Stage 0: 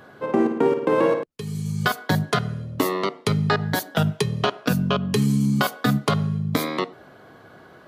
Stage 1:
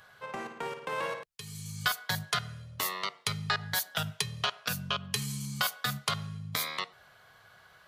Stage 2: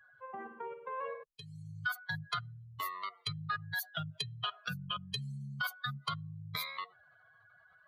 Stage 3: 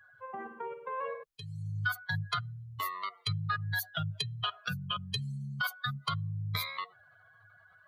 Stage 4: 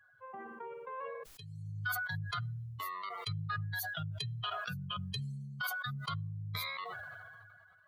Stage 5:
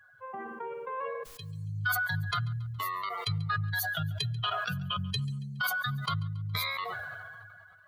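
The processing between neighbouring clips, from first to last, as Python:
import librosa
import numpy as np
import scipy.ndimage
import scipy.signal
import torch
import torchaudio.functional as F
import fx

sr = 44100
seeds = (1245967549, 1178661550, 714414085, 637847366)

y1 = fx.tone_stack(x, sr, knobs='10-0-10')
y2 = fx.spec_expand(y1, sr, power=2.4)
y2 = y2 * librosa.db_to_amplitude(-5.5)
y3 = fx.peak_eq(y2, sr, hz=100.0, db=11.5, octaves=0.26)
y3 = y3 * librosa.db_to_amplitude(3.0)
y4 = fx.sustainer(y3, sr, db_per_s=25.0)
y4 = y4 * librosa.db_to_amplitude(-6.0)
y5 = fx.echo_feedback(y4, sr, ms=139, feedback_pct=47, wet_db=-21.5)
y5 = y5 * librosa.db_to_amplitude(6.5)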